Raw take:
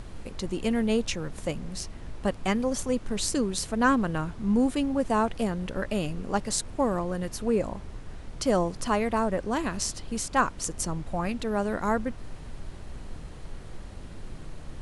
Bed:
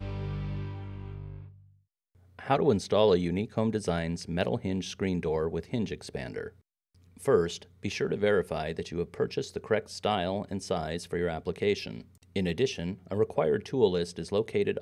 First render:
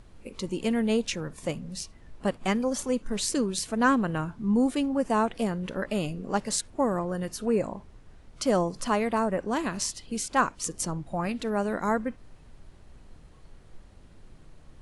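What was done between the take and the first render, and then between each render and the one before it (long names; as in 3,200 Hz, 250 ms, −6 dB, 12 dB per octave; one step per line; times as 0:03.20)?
noise reduction from a noise print 11 dB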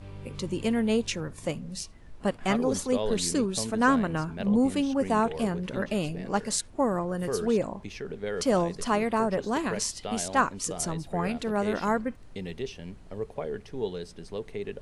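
mix in bed −7.5 dB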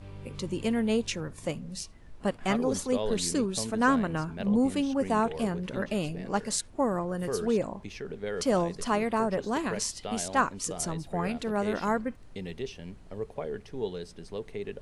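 level −1.5 dB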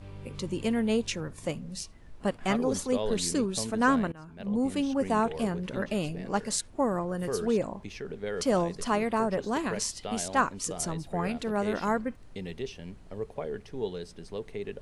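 0:04.12–0:04.85: fade in, from −23 dB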